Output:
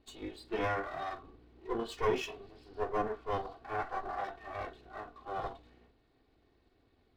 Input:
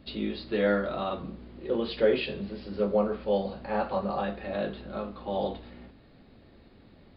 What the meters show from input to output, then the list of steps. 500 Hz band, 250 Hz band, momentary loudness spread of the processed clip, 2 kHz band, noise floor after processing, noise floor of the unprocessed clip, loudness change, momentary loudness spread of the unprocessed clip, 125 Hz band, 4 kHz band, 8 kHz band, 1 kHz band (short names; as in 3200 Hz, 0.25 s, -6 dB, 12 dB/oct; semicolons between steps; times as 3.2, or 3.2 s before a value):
-9.5 dB, -12.5 dB, 14 LU, -4.5 dB, -71 dBFS, -56 dBFS, -8.0 dB, 12 LU, -8.5 dB, -9.0 dB, n/a, -2.0 dB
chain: minimum comb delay 2.7 ms; spectral noise reduction 8 dB; gain -5 dB